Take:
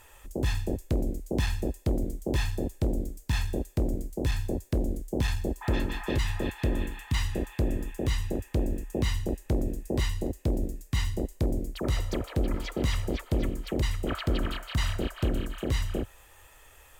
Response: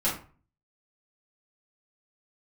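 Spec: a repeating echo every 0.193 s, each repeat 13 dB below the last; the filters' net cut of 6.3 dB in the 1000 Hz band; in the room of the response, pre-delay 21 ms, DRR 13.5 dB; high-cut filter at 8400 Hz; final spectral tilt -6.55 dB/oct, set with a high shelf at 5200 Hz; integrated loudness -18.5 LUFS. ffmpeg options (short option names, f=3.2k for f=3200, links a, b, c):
-filter_complex "[0:a]lowpass=8.4k,equalizer=f=1k:t=o:g=-8.5,highshelf=f=5.2k:g=-5,aecho=1:1:193|386|579:0.224|0.0493|0.0108,asplit=2[a][b];[1:a]atrim=start_sample=2205,adelay=21[c];[b][c]afir=irnorm=-1:irlink=0,volume=-23.5dB[d];[a][d]amix=inputs=2:normalize=0,volume=12.5dB"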